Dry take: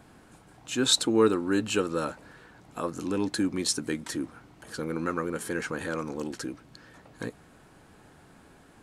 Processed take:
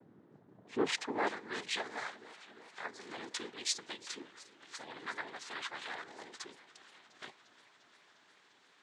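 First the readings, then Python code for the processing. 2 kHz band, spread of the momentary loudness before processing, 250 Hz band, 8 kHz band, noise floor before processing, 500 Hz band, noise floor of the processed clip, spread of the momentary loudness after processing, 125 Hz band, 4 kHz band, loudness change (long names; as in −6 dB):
−4.5 dB, 17 LU, −17.0 dB, −11.0 dB, −56 dBFS, −13.5 dB, −66 dBFS, 18 LU, −21.5 dB, −9.5 dB, −11.0 dB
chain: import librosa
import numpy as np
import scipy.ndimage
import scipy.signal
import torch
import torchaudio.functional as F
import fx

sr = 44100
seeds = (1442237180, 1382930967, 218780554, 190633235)

y = fx.noise_vocoder(x, sr, seeds[0], bands=6)
y = fx.filter_sweep_bandpass(y, sr, from_hz=260.0, to_hz=3200.0, start_s=0.56, end_s=1.33, q=0.77)
y = fx.echo_warbled(y, sr, ms=352, feedback_pct=78, rate_hz=2.8, cents=66, wet_db=-20)
y = F.gain(torch.from_numpy(y), -2.5).numpy()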